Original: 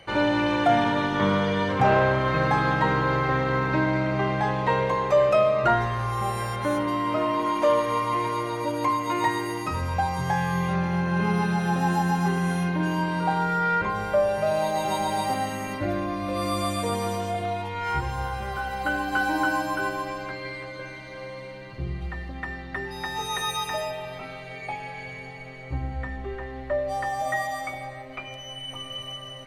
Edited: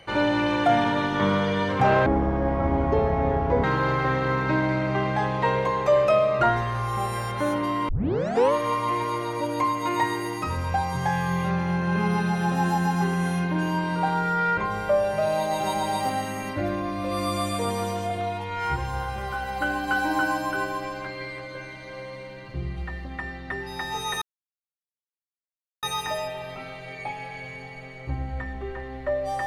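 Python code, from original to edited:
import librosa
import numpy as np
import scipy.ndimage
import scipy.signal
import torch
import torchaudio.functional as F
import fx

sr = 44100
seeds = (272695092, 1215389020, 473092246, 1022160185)

y = fx.edit(x, sr, fx.speed_span(start_s=2.06, length_s=0.82, speed=0.52),
    fx.tape_start(start_s=7.13, length_s=0.64),
    fx.insert_silence(at_s=23.46, length_s=1.61), tone=tone)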